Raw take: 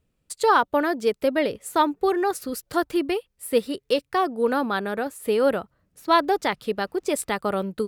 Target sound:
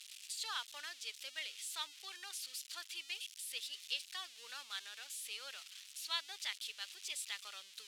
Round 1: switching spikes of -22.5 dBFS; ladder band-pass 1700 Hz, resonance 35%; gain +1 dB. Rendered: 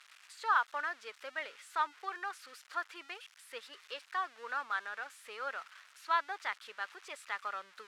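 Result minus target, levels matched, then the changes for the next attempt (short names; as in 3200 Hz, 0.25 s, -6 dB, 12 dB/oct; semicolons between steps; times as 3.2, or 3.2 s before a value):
4000 Hz band -13.0 dB
change: ladder band-pass 3800 Hz, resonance 35%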